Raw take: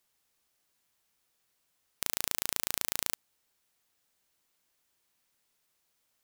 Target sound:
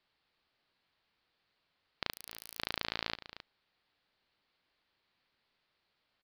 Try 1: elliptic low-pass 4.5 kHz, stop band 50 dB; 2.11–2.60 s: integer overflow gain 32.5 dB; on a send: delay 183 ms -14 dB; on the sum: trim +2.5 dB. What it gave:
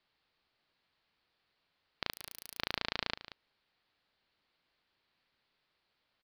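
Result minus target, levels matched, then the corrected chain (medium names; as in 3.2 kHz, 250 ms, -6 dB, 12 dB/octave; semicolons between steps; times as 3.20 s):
echo 84 ms early
elliptic low-pass 4.5 kHz, stop band 50 dB; 2.11–2.60 s: integer overflow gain 32.5 dB; on a send: delay 267 ms -14 dB; on the sum: trim +2.5 dB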